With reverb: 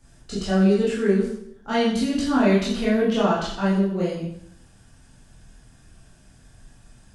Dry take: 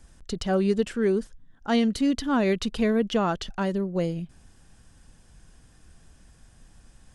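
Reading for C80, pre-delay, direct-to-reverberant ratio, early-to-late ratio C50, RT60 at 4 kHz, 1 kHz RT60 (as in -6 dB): 6.0 dB, 8 ms, -8.5 dB, 2.5 dB, 0.65 s, 0.70 s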